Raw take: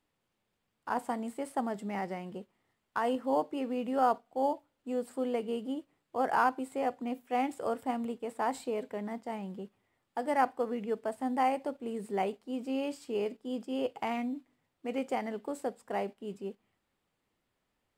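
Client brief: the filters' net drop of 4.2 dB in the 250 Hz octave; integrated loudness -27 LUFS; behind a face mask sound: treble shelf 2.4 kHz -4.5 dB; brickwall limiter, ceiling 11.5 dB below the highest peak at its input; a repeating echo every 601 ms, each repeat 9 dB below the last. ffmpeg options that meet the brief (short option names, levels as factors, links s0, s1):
-af "equalizer=f=250:t=o:g=-4.5,alimiter=level_in=1.26:limit=0.0631:level=0:latency=1,volume=0.794,highshelf=f=2400:g=-4.5,aecho=1:1:601|1202|1803|2404:0.355|0.124|0.0435|0.0152,volume=3.76"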